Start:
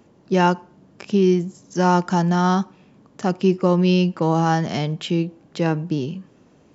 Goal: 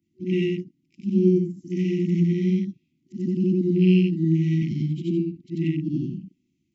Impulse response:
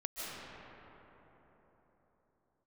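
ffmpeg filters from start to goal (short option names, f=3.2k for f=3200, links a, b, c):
-af "afftfilt=real='re':imag='-im':win_size=8192:overlap=0.75,afwtdn=0.02,afftfilt=real='re*(1-between(b*sr/4096,370,1900))':imag='im*(1-between(b*sr/4096,370,1900))':win_size=4096:overlap=0.75,volume=3dB"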